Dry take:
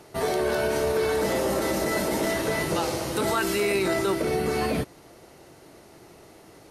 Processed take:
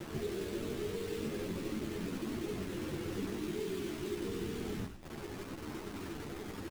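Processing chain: inverse Chebyshev low-pass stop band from 2200 Hz, stop band 80 dB; notches 50/100/150 Hz; in parallel at +2.5 dB: limiter -29 dBFS, peak gain reduction 9 dB; on the sum: compressor 8:1, threshold -41 dBFS, peak gain reduction 19 dB; requantised 8-bit, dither none; ring modulator 21 Hz; on a send: frequency-shifting echo 98 ms, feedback 47%, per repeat -52 Hz, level -9 dB; on the sum: ensemble effect; gain +9 dB

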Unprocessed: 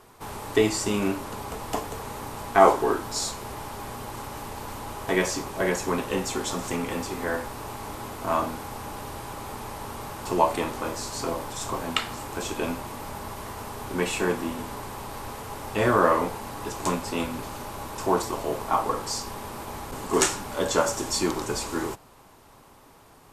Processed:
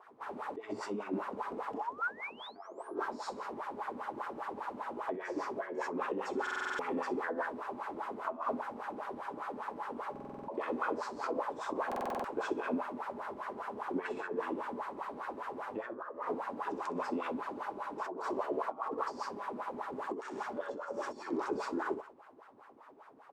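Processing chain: tone controls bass -7 dB, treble -2 dB; on a send: feedback echo 63 ms, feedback 34%, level -4 dB; on the sum: painted sound rise, 1.78–2.95, 770–11000 Hz -25 dBFS; dynamic EQ 5300 Hz, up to +4 dB, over -45 dBFS, Q 2.4; negative-ratio compressor -29 dBFS, ratio -1; wah 5 Hz 240–1600 Hz, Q 3.2; stuck buffer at 6.42/10.11/11.87, samples 2048, times 7

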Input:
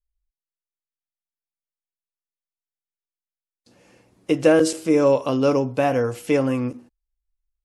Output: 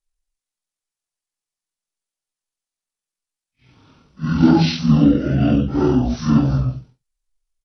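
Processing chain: phase scrambler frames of 0.2 s; pitch shift -11.5 st; tone controls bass 0 dB, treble +5 dB; gain +4 dB

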